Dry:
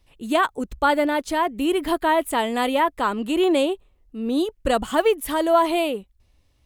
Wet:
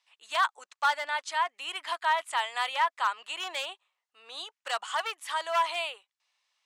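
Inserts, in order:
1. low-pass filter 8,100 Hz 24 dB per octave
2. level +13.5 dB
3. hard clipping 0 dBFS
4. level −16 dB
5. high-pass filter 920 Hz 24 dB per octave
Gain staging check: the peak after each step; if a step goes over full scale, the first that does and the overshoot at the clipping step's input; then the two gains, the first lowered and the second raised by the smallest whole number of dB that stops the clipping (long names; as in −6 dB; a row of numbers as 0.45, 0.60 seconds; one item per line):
−5.5, +8.0, 0.0, −16.0, −15.0 dBFS
step 2, 8.0 dB
step 2 +5.5 dB, step 4 −8 dB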